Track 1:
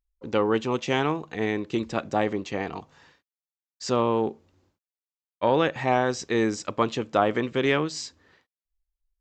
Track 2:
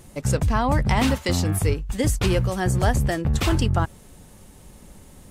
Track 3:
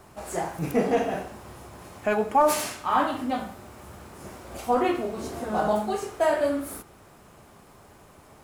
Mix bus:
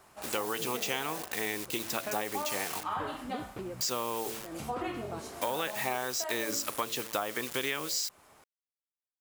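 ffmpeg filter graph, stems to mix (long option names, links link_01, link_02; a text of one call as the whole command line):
ffmpeg -i stem1.wav -i stem2.wav -i stem3.wav -filter_complex "[0:a]bandreject=frequency=111.8:width_type=h:width=4,bandreject=frequency=223.6:width_type=h:width=4,bandreject=frequency=335.4:width_type=h:width=4,bandreject=frequency=447.2:width_type=h:width=4,bandreject=frequency=559:width_type=h:width=4,bandreject=frequency=670.8:width_type=h:width=4,acrusher=bits=6:mix=0:aa=0.000001,crystalizer=i=2:c=0,volume=1.5dB,asplit=2[link_01][link_02];[1:a]bandpass=frequency=290:width_type=q:width=1.4:csg=0,acompressor=threshold=-30dB:ratio=6,adelay=1350,volume=1.5dB[link_03];[2:a]acompressor=threshold=-23dB:ratio=6,volume=-3.5dB[link_04];[link_02]apad=whole_len=293479[link_05];[link_03][link_05]sidechaincompress=threshold=-41dB:ratio=8:attack=16:release=189[link_06];[link_01][link_06][link_04]amix=inputs=3:normalize=0,lowshelf=frequency=490:gain=-12,acompressor=threshold=-29dB:ratio=6" out.wav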